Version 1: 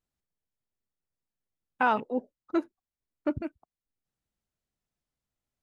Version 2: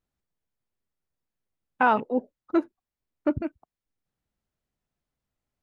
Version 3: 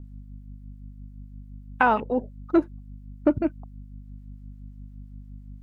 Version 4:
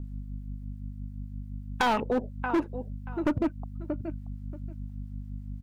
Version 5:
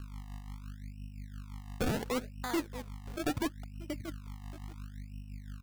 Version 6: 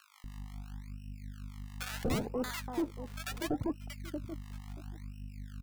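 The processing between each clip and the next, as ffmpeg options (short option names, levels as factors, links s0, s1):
-af "highshelf=f=3500:g=-8.5,volume=1.68"
-filter_complex "[0:a]acompressor=threshold=0.0562:ratio=2,aeval=exprs='val(0)+0.00501*(sin(2*PI*50*n/s)+sin(2*PI*2*50*n/s)/2+sin(2*PI*3*50*n/s)/3+sin(2*PI*4*50*n/s)/4+sin(2*PI*5*50*n/s)/5)':c=same,acrossover=split=880[s0][s1];[s0]aeval=exprs='val(0)*(1-0.5/2+0.5/2*cos(2*PI*5.8*n/s))':c=same[s2];[s1]aeval=exprs='val(0)*(1-0.5/2-0.5/2*cos(2*PI*5.8*n/s))':c=same[s3];[s2][s3]amix=inputs=2:normalize=0,volume=2.51"
-af "aecho=1:1:631|1262:0.15|0.0254,volume=11.2,asoftclip=hard,volume=0.0891,acompressor=threshold=0.0282:ratio=2,volume=1.68"
-af "acrusher=samples=31:mix=1:aa=0.000001:lfo=1:lforange=31:lforate=0.72,volume=0.473"
-filter_complex "[0:a]acrossover=split=990[s0][s1];[s0]adelay=240[s2];[s2][s1]amix=inputs=2:normalize=0"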